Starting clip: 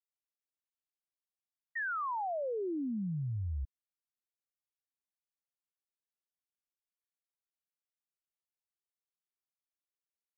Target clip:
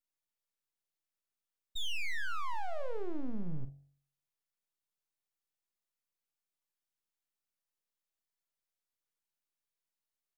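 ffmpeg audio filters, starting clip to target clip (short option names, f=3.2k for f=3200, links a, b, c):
-filter_complex "[0:a]aeval=exprs='abs(val(0))':c=same,asplit=2[a][b];[b]adelay=44,volume=-12dB[c];[a][c]amix=inputs=2:normalize=0,bandreject=f=46.82:t=h:w=4,bandreject=f=93.64:t=h:w=4,bandreject=f=140.46:t=h:w=4,bandreject=f=187.28:t=h:w=4,bandreject=f=234.1:t=h:w=4,bandreject=f=280.92:t=h:w=4,bandreject=f=327.74:t=h:w=4,bandreject=f=374.56:t=h:w=4,bandreject=f=421.38:t=h:w=4,bandreject=f=468.2:t=h:w=4,bandreject=f=515.02:t=h:w=4,bandreject=f=561.84:t=h:w=4,bandreject=f=608.66:t=h:w=4,bandreject=f=655.48:t=h:w=4,bandreject=f=702.3:t=h:w=4,bandreject=f=749.12:t=h:w=4,bandreject=f=795.94:t=h:w=4,volume=2.5dB"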